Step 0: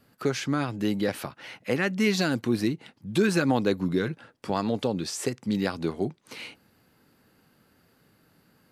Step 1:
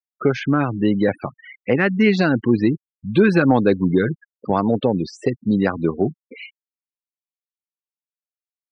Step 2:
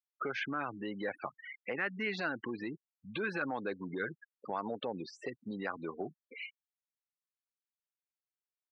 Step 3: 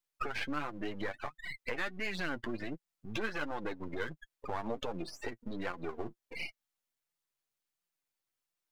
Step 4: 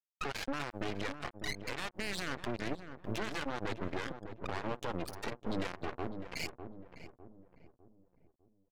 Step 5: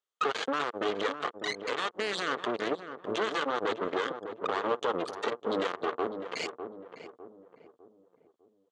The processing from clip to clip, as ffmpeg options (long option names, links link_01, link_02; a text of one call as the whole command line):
ffmpeg -i in.wav -af "afftfilt=real='re*gte(hypot(re,im),0.0282)':imag='im*gte(hypot(re,im),0.0282)':win_size=1024:overlap=0.75,lowpass=2700,acontrast=61,volume=2.5dB" out.wav
ffmpeg -i in.wav -af "alimiter=limit=-13.5dB:level=0:latency=1:release=96,bandpass=frequency=1600:width_type=q:width=0.7:csg=0,volume=-5.5dB" out.wav
ffmpeg -i in.wav -af "aeval=exprs='if(lt(val(0),0),0.251*val(0),val(0))':channel_layout=same,acompressor=threshold=-47dB:ratio=2,flanger=delay=5.7:depth=3.2:regen=31:speed=1.4:shape=sinusoidal,volume=13dB" out.wav
ffmpeg -i in.wav -filter_complex "[0:a]alimiter=level_in=7.5dB:limit=-24dB:level=0:latency=1:release=41,volume=-7.5dB,acrusher=bits=5:mix=0:aa=0.5,asplit=2[link_01][link_02];[link_02]adelay=603,lowpass=frequency=890:poles=1,volume=-7dB,asplit=2[link_03][link_04];[link_04]adelay=603,lowpass=frequency=890:poles=1,volume=0.44,asplit=2[link_05][link_06];[link_06]adelay=603,lowpass=frequency=890:poles=1,volume=0.44,asplit=2[link_07][link_08];[link_08]adelay=603,lowpass=frequency=890:poles=1,volume=0.44,asplit=2[link_09][link_10];[link_10]adelay=603,lowpass=frequency=890:poles=1,volume=0.44[link_11];[link_03][link_05][link_07][link_09][link_11]amix=inputs=5:normalize=0[link_12];[link_01][link_12]amix=inputs=2:normalize=0,volume=3.5dB" out.wav
ffmpeg -i in.wav -af "highpass=300,equalizer=frequency=450:width_type=q:width=4:gain=9,equalizer=frequency=1200:width_type=q:width=4:gain=8,equalizer=frequency=2400:width_type=q:width=4:gain=-5,equalizer=frequency=3300:width_type=q:width=4:gain=5,equalizer=frequency=5200:width_type=q:width=4:gain=-8,lowpass=frequency=7300:width=0.5412,lowpass=frequency=7300:width=1.3066,volume=6dB" out.wav